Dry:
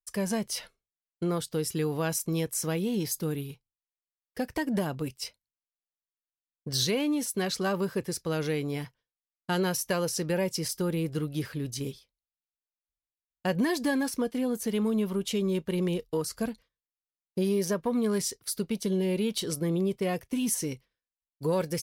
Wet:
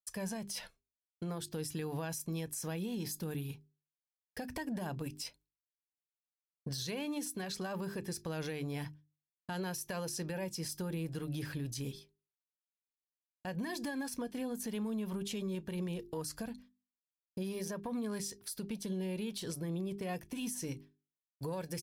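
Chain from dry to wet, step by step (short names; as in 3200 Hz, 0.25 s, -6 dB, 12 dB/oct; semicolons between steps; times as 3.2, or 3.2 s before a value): gate with hold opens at -57 dBFS; notches 50/100/150/200/250/300/350/400 Hz; comb 1.2 ms, depth 31%; compressor, threshold -34 dBFS, peak gain reduction 11 dB; limiter -30.5 dBFS, peak gain reduction 8.5 dB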